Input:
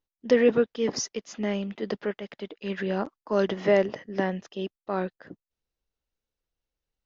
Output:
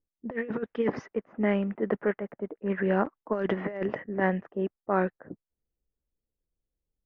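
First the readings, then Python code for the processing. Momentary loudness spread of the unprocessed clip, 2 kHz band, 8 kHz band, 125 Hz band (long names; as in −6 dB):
13 LU, 0.0 dB, can't be measured, +1.5 dB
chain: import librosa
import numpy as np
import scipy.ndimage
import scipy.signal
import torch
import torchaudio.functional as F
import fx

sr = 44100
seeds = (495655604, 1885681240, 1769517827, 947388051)

y = fx.env_lowpass(x, sr, base_hz=410.0, full_db=-19.5)
y = fx.high_shelf_res(y, sr, hz=2900.0, db=-14.0, q=1.5)
y = fx.over_compress(y, sr, threshold_db=-25.0, ratio=-0.5)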